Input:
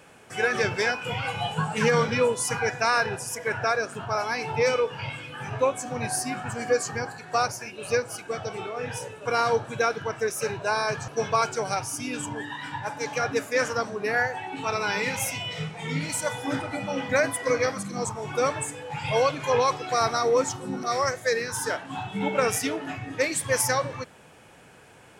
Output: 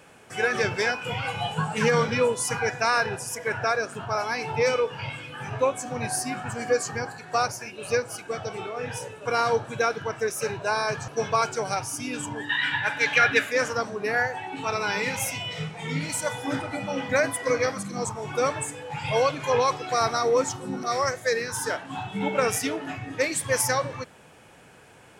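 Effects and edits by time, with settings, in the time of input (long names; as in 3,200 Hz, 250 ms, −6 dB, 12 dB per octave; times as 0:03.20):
0:12.49–0:13.52: flat-topped bell 2,400 Hz +13.5 dB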